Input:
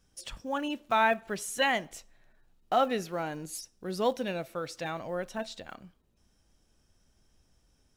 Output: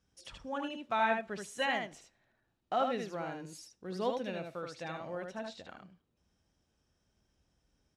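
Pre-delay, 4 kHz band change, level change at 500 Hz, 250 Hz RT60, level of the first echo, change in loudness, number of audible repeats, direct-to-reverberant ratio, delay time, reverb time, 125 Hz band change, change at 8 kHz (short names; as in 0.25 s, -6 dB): none, -6.0 dB, -5.0 dB, none, -4.5 dB, -5.0 dB, 1, none, 76 ms, none, -4.5 dB, -11.0 dB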